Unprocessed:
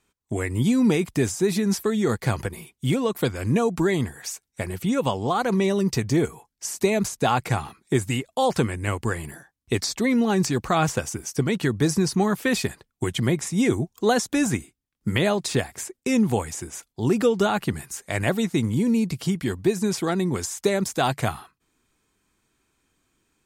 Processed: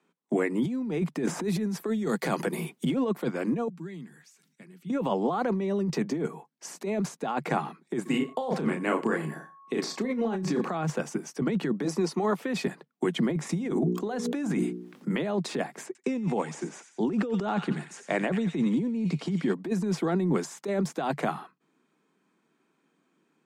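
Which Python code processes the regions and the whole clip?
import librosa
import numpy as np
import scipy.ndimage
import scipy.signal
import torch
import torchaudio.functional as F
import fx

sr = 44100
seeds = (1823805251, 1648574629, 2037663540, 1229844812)

y = fx.chain(x, sr, fx.high_shelf(hz=8000.0, db=10.0),
    fx.band_squash(depth_pct=100), at=(1.27, 2.85))
y = fx.chain(y, sr, fx.tone_stack(knobs='6-0-2'),
    fx.sustainer(db_per_s=88.0), at=(3.68, 4.9))
y = fx.doubler(y, sr, ms=32.0, db=-5.0, at=(8.05, 10.71), fade=0.02)
y = fx.dmg_tone(y, sr, hz=1100.0, level_db=-52.0, at=(8.05, 10.71), fade=0.02)
y = fx.echo_single(y, sr, ms=90, db=-20.0, at=(8.05, 10.71), fade=0.02)
y = fx.chain(y, sr, fx.highpass(hz=350.0, slope=12),
    fx.notch(hz=1600.0, q=6.7), at=(11.84, 12.41))
y = fx.chain(y, sr, fx.hum_notches(base_hz=60, count=8),
    fx.env_flatten(amount_pct=50), at=(13.49, 15.09))
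y = fx.chain(y, sr, fx.lowpass(hz=9100.0, slope=24),
    fx.echo_wet_highpass(ms=89, feedback_pct=49, hz=1900.0, wet_db=-8), at=(15.86, 19.54))
y = scipy.signal.sosfilt(scipy.signal.butter(16, 150.0, 'highpass', fs=sr, output='sos'), y)
y = fx.over_compress(y, sr, threshold_db=-26.0, ratio=-1.0)
y = fx.lowpass(y, sr, hz=1200.0, slope=6)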